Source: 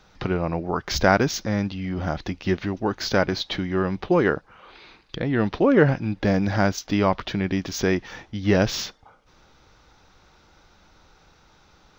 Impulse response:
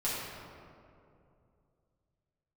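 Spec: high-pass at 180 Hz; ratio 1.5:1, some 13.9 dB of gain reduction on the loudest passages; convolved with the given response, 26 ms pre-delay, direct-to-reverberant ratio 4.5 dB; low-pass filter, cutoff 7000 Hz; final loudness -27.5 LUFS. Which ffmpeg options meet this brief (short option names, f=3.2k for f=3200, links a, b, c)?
-filter_complex "[0:a]highpass=180,lowpass=7k,acompressor=threshold=-52dB:ratio=1.5,asplit=2[a][b];[1:a]atrim=start_sample=2205,adelay=26[c];[b][c]afir=irnorm=-1:irlink=0,volume=-11.5dB[d];[a][d]amix=inputs=2:normalize=0,volume=7.5dB"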